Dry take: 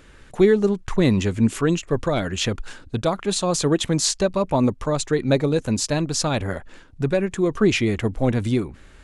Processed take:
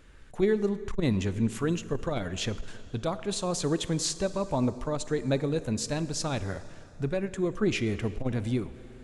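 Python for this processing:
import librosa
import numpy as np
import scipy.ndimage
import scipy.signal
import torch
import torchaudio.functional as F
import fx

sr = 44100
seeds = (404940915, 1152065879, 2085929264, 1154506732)

y = fx.low_shelf(x, sr, hz=71.0, db=6.5)
y = fx.rev_plate(y, sr, seeds[0], rt60_s=2.7, hf_ratio=0.8, predelay_ms=0, drr_db=13.5)
y = fx.transformer_sat(y, sr, knee_hz=87.0)
y = F.gain(torch.from_numpy(y), -8.5).numpy()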